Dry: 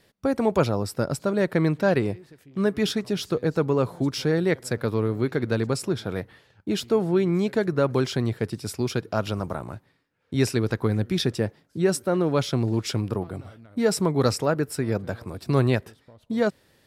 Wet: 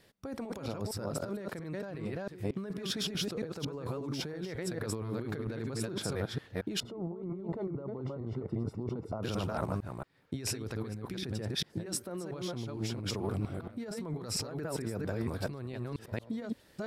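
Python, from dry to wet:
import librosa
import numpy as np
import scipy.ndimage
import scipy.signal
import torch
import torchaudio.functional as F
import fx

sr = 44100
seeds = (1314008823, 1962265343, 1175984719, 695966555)

y = fx.reverse_delay(x, sr, ms=228, wet_db=-3.0)
y = fx.over_compress(y, sr, threshold_db=-29.0, ratio=-1.0)
y = fx.savgol(y, sr, points=65, at=(6.8, 9.23))
y = F.gain(torch.from_numpy(y), -8.0).numpy()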